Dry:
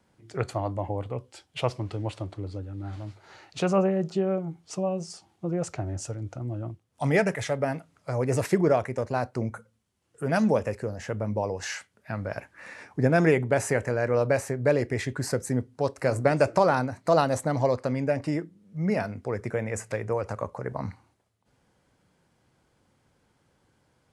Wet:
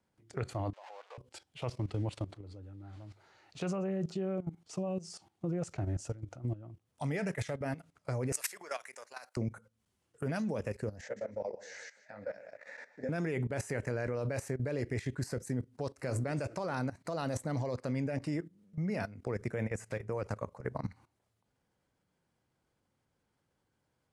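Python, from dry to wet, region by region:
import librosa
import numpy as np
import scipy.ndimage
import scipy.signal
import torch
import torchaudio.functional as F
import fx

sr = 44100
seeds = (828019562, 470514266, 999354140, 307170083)

y = fx.chain(x, sr, fx.zero_step(step_db=-36.0),
    fx.bessel_highpass(hz=910.0, order=8),
    fx.air_absorb(metres=120.0), at=(0.73, 1.18))
y = fx.chain(y, sr, fx.highpass(hz=1200.0, slope=12),
    fx.high_shelf(hz=6200.0, db=10.5), at=(8.32, 9.37))
y = fx.chain(y, sr, fx.cabinet(low_hz=320.0, low_slope=12, high_hz=7000.0, hz=(350.0, 540.0, 1100.0, 1900.0, 2800.0, 5200.0), db=(-9, 9, -10, 4, -10, -3)),
    fx.echo_feedback(ms=152, feedback_pct=16, wet_db=-9.0),
    fx.detune_double(cents=44), at=(11.01, 13.09))
y = fx.level_steps(y, sr, step_db=16)
y = fx.dynamic_eq(y, sr, hz=810.0, q=0.77, threshold_db=-46.0, ratio=4.0, max_db=-5)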